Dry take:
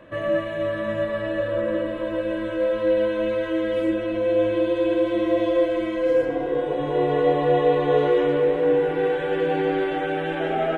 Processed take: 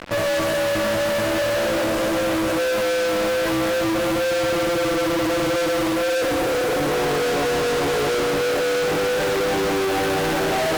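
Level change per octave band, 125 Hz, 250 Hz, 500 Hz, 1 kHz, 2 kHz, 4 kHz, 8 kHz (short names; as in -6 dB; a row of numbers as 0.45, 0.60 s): +2.0 dB, +1.0 dB, 0.0 dB, +3.5 dB, +7.5 dB, +12.0 dB, n/a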